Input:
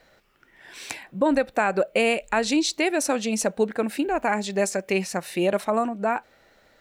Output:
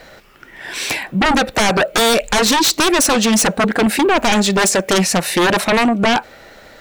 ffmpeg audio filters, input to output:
ffmpeg -i in.wav -af "aeval=exprs='0.316*sin(PI/2*4.47*val(0)/0.316)':channel_layout=same" out.wav

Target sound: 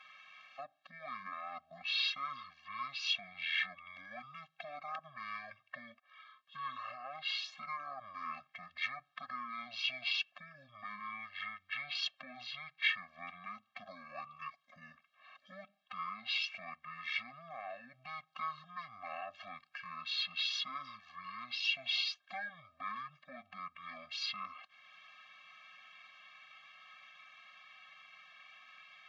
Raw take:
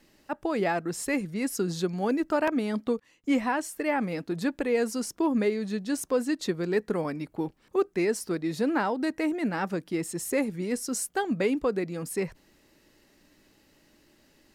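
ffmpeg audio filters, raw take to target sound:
ffmpeg -i in.wav -af "alimiter=level_in=0.5dB:limit=-24dB:level=0:latency=1:release=30,volume=-0.5dB,acompressor=threshold=-43dB:ratio=2,asuperpass=centerf=4100:order=4:qfactor=0.91,asetrate=22050,aresample=44100,afftfilt=real='re*eq(mod(floor(b*sr/1024/260),2),0)':imag='im*eq(mod(floor(b*sr/1024/260),2),0)':win_size=1024:overlap=0.75,volume=16dB" out.wav

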